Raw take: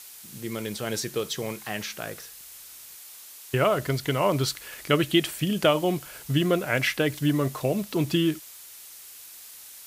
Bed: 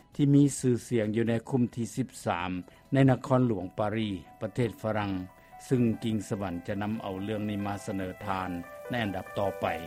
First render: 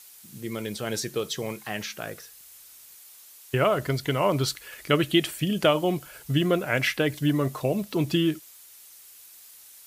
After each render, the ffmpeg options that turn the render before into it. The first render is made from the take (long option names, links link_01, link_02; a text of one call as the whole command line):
ffmpeg -i in.wav -af "afftdn=noise_reduction=6:noise_floor=-46" out.wav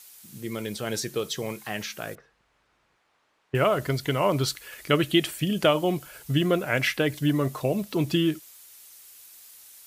ffmpeg -i in.wav -filter_complex "[0:a]asettb=1/sr,asplit=3[link_01][link_02][link_03];[link_01]atrim=end=2.154[link_04];[link_02]atrim=start=2.15:end=3.55,asetpts=PTS-STARTPTS,afade=type=in:duration=0.004:curve=qsin,afade=type=out:start_time=1.396:duration=0.004:curve=qsin,lowpass=1400[link_05];[link_03]atrim=start=3.546[link_06];[link_04][link_05]acrossfade=duration=0.004:curve1=hsin:curve2=qsin[link_07];[link_07][link_06]acrossfade=duration=0.004:curve1=qsin:curve2=hsin" out.wav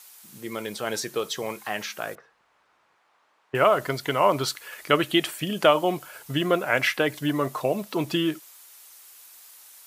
ffmpeg -i in.wav -af "highpass=frequency=260:poles=1,equalizer=frequency=980:width_type=o:width=1.6:gain=6.5" out.wav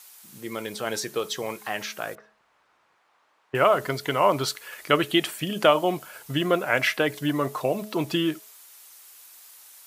ffmpeg -i in.wav -af "bandreject=frequency=213.2:width_type=h:width=4,bandreject=frequency=426.4:width_type=h:width=4,bandreject=frequency=639.6:width_type=h:width=4,bandreject=frequency=852.8:width_type=h:width=4" out.wav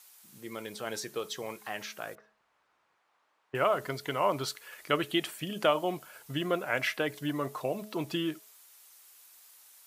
ffmpeg -i in.wav -af "volume=-7.5dB" out.wav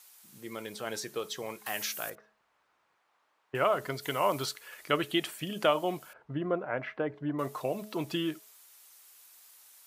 ffmpeg -i in.wav -filter_complex "[0:a]asettb=1/sr,asplit=3[link_01][link_02][link_03];[link_01]atrim=end=1.664[link_04];[link_02]atrim=start=1.66:end=2.1,asetpts=PTS-STARTPTS,afade=type=in:duration=0.004:curve=qsin,afade=type=out:start_time=0.436:duration=0.004:curve=qsin,aemphasis=mode=production:type=75kf[link_05];[link_03]atrim=start=2.096[link_06];[link_04][link_05]acrossfade=duration=0.004:curve1=hsin:curve2=qsin[link_07];[link_07][link_06]acrossfade=duration=0.004:curve1=qsin:curve2=hsin,asettb=1/sr,asplit=3[link_08][link_09][link_10];[link_08]atrim=end=4.024[link_11];[link_09]atrim=start=4.02:end=4.46,asetpts=PTS-STARTPTS,afade=type=in:duration=0.004:curve=qsin,afade=type=out:start_time=0.436:duration=0.004:curve=qsin,aemphasis=mode=production:type=cd[link_12];[link_10]atrim=start=4.456[link_13];[link_11][link_12]acrossfade=duration=0.004:curve1=hsin:curve2=qsin[link_14];[link_14][link_13]acrossfade=duration=0.004:curve1=qsin:curve2=hsin,asettb=1/sr,asplit=3[link_15][link_16][link_17];[link_15]atrim=end=6.134[link_18];[link_16]atrim=start=6.13:end=7.39,asetpts=PTS-STARTPTS,afade=type=in:duration=0.004:curve=qsin,afade=type=out:start_time=1.256:duration=0.004:curve=qsin,lowpass=1200[link_19];[link_17]atrim=start=7.386[link_20];[link_18][link_19]acrossfade=duration=0.004:curve1=hsin:curve2=qsin[link_21];[link_21][link_20]acrossfade=duration=0.004:curve1=qsin:curve2=hsin" out.wav